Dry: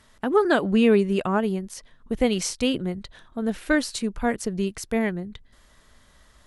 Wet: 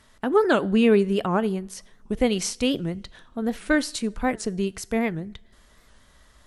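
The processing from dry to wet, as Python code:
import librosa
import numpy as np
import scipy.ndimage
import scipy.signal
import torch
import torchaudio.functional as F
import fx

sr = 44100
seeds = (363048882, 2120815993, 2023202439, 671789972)

y = fx.rev_double_slope(x, sr, seeds[0], early_s=0.48, late_s=2.5, knee_db=-22, drr_db=19.5)
y = fx.record_warp(y, sr, rpm=78.0, depth_cents=160.0)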